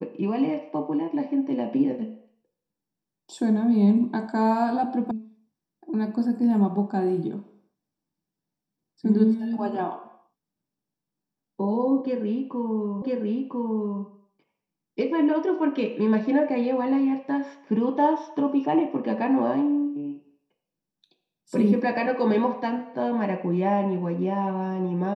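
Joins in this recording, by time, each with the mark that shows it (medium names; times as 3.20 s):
5.11 s: sound stops dead
13.02 s: repeat of the last 1 s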